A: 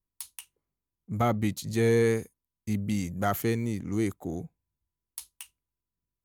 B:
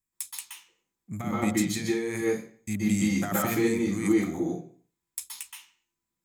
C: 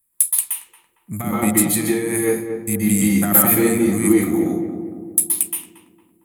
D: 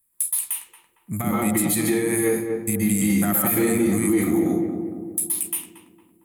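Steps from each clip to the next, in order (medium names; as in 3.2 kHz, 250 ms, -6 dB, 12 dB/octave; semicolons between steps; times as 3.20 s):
bass shelf 110 Hz -10 dB; compressor with a negative ratio -28 dBFS, ratio -0.5; reverberation RT60 0.45 s, pre-delay 120 ms, DRR -4.5 dB
resonant high shelf 8 kHz +11 dB, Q 3; sine folder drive 8 dB, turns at 1 dBFS; on a send: filtered feedback delay 228 ms, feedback 57%, low-pass 1.2 kHz, level -7 dB; on the sum: trim -4.5 dB
peak limiter -12 dBFS, peak gain reduction 10 dB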